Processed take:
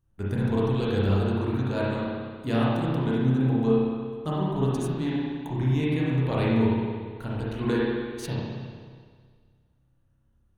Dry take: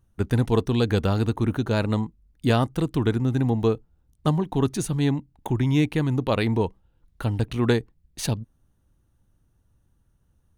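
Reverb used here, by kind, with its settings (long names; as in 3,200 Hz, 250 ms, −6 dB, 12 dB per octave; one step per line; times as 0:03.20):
spring reverb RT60 1.8 s, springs 31/53 ms, chirp 45 ms, DRR −7.5 dB
level −10.5 dB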